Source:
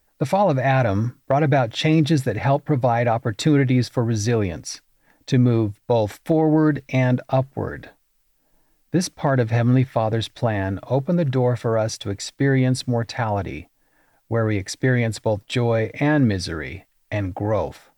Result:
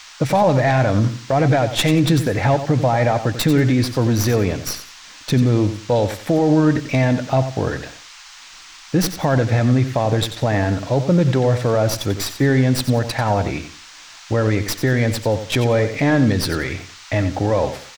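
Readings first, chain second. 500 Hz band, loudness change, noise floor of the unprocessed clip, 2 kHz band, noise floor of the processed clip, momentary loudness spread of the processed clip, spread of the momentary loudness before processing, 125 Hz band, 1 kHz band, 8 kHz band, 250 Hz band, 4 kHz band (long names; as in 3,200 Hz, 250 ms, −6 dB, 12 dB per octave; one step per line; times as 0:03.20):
+2.5 dB, +2.5 dB, −65 dBFS, +3.0 dB, −41 dBFS, 8 LU, 9 LU, +3.0 dB, +2.5 dB, +5.5 dB, +2.5 dB, +5.5 dB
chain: stylus tracing distortion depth 0.085 ms
brickwall limiter −13.5 dBFS, peak gain reduction 8 dB
on a send: repeating echo 91 ms, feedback 25%, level −11 dB
on the sum: noise in a band 880–6,600 Hz −47 dBFS
level +5.5 dB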